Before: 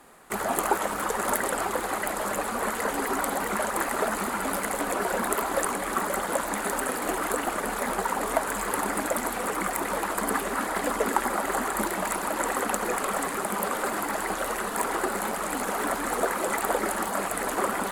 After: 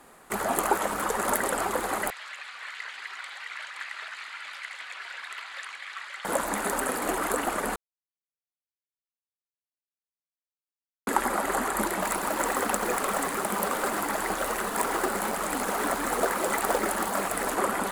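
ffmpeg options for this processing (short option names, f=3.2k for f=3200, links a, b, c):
-filter_complex "[0:a]asettb=1/sr,asplit=3[a][b][c];[a]atrim=end=2.104[d];[b]atrim=start=2.1:end=6.25,asetpts=PTS-STARTPTS,afade=t=in:d=0.004:c=qsin,afade=t=out:st=4.146:d=0.004:c=qsin,asuperpass=centerf=2900:order=4:qfactor=1.1[e];[c]atrim=start=6.246[f];[d][e]acrossfade=d=0.004:c1=hsin:c2=qsin[g];[g][f]acrossfade=d=0.004:c1=qsin:c2=hsin,asettb=1/sr,asplit=3[h][i][j];[h]atrim=end=12.014[k];[i]atrim=start=12.01:end=17.54,asetpts=PTS-STARTPTS,afade=t=in:d=0.004:c=qsin,afade=t=out:st=5.526:d=0.004:c=qsin,acrusher=bits=3:mode=log:mix=0:aa=0.000001[l];[j]atrim=start=17.536[m];[k][l]acrossfade=d=0.004:c1=hsin:c2=qsin[n];[n][m]acrossfade=d=0.004:c1=qsin:c2=hsin,asplit=3[o][p][q];[o]atrim=end=7.76,asetpts=PTS-STARTPTS,afade=t=out:st=7.756:d=0.004:c=hsin[r];[p]atrim=start=7.76:end=11.07,asetpts=PTS-STARTPTS,volume=0[s];[q]atrim=start=11.07,asetpts=PTS-STARTPTS,afade=t=in:d=0.004:c=hsin[t];[r][s][t]concat=n=3:v=0:a=1"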